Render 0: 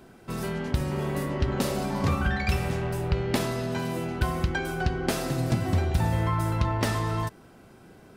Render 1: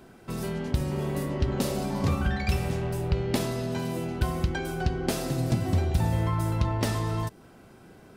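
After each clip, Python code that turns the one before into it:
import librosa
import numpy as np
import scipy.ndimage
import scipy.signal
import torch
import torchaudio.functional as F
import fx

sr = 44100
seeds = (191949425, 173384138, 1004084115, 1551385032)

y = fx.dynamic_eq(x, sr, hz=1500.0, q=0.77, threshold_db=-44.0, ratio=4.0, max_db=-5)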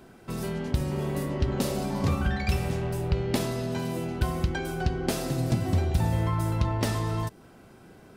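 y = x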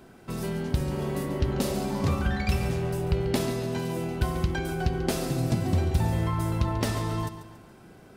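y = fx.echo_feedback(x, sr, ms=140, feedback_pct=45, wet_db=-12)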